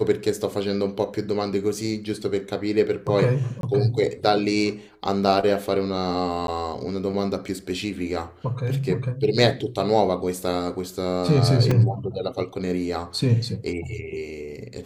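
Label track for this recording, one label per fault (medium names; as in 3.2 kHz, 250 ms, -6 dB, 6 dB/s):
3.610000	3.630000	dropout 22 ms
6.470000	6.480000	dropout 12 ms
11.710000	11.710000	dropout 3.7 ms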